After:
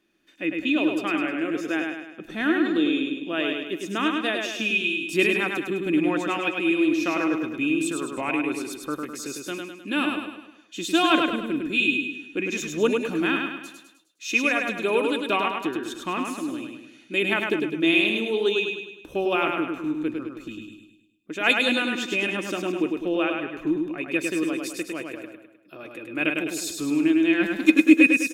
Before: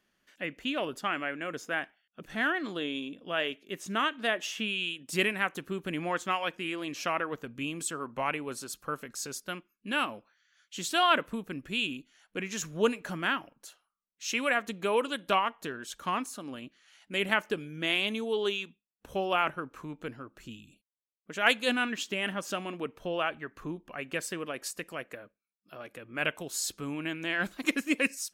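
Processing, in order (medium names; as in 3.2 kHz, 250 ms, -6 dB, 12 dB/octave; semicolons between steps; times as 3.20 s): small resonant body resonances 320/2500/3600 Hz, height 17 dB, ringing for 55 ms; on a send: feedback delay 103 ms, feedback 48%, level -4 dB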